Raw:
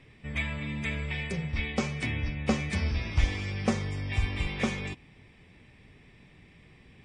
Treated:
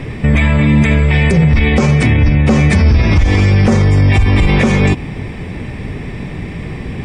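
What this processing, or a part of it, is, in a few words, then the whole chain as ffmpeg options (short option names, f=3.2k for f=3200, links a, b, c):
mastering chain: -af "equalizer=f=3.2k:t=o:w=1.1:g=-4,acompressor=threshold=-32dB:ratio=2.5,tiltshelf=f=1.2k:g=3.5,asoftclip=type=hard:threshold=-19.5dB,alimiter=level_in=31dB:limit=-1dB:release=50:level=0:latency=1,volume=-2dB"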